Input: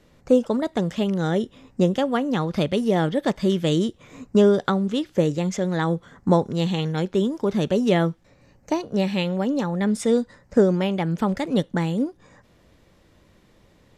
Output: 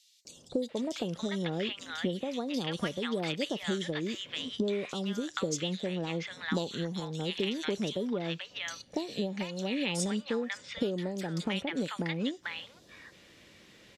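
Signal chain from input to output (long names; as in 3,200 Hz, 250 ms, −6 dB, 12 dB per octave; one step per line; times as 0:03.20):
meter weighting curve D
downward compressor, threshold −29 dBFS, peak gain reduction 16 dB
three-band delay without the direct sound highs, lows, mids 250/690 ms, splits 950/3,900 Hz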